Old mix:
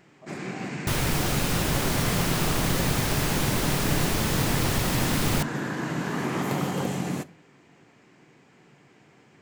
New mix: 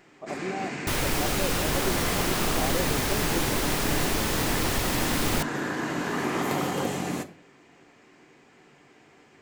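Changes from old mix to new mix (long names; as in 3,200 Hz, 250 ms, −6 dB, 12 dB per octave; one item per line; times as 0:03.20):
speech +10.0 dB
first sound: send +8.5 dB
master: add parametric band 140 Hz −8.5 dB 1 octave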